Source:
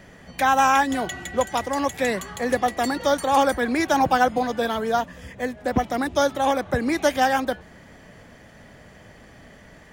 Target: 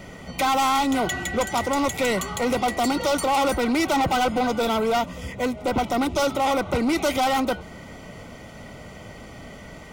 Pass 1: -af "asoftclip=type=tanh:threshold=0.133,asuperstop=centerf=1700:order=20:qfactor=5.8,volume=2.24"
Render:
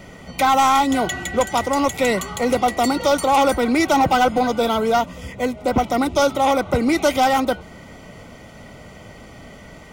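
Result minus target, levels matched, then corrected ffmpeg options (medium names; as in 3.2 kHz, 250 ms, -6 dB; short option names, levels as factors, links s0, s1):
saturation: distortion -6 dB
-af "asoftclip=type=tanh:threshold=0.0531,asuperstop=centerf=1700:order=20:qfactor=5.8,volume=2.24"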